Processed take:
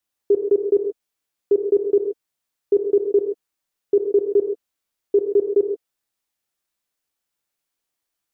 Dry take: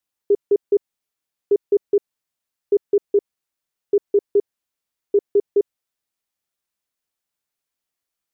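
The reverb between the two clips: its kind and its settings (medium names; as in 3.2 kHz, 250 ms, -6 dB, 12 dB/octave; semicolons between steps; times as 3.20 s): gated-style reverb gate 160 ms flat, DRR 4 dB; trim +1 dB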